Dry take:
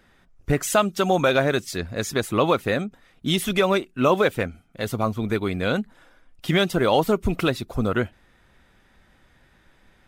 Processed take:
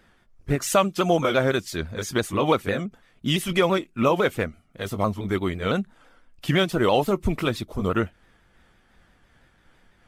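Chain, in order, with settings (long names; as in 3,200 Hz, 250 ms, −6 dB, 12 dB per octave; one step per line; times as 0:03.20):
pitch shifter swept by a sawtooth −2 semitones, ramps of 168 ms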